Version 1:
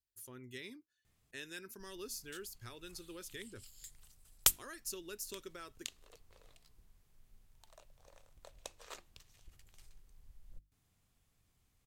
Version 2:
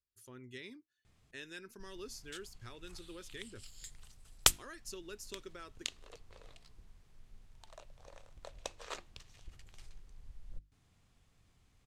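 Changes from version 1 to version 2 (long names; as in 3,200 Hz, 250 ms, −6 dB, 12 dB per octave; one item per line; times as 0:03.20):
background +7.0 dB
master: add high-frequency loss of the air 55 metres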